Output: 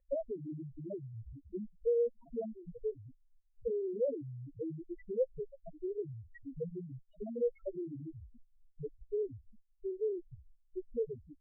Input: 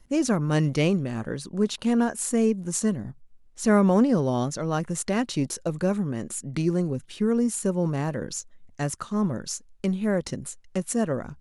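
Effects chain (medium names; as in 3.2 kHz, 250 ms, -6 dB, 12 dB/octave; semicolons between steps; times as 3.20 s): in parallel at 0 dB: peak limiter -17.5 dBFS, peak gain reduction 8 dB; on the sum: compression 10:1, threshold -29 dBFS, peak gain reduction 17.5 dB; Chebyshev shaper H 3 -12 dB, 7 -38 dB, 8 -9 dB, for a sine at -12.5 dBFS; loudest bins only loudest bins 1; cascade formant filter e; trim +14 dB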